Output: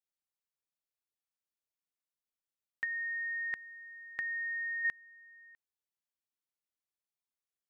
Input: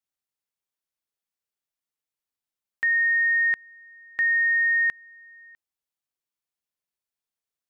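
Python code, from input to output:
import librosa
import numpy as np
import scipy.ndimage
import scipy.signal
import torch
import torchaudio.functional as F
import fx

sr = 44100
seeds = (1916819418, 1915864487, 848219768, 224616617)

y = fx.over_compress(x, sr, threshold_db=-26.0, ratio=-0.5, at=(2.84, 4.85))
y = F.gain(torch.from_numpy(y), -8.0).numpy()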